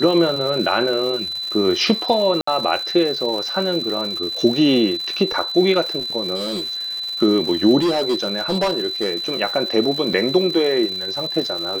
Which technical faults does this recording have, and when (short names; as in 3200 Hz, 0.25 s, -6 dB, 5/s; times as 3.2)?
crackle 290/s -27 dBFS
tone 4000 Hz -24 dBFS
2.41–2.47 gap 64 ms
6.35–7.06 clipped -21 dBFS
7.8–9.32 clipped -15 dBFS
10.13–10.14 gap 5.4 ms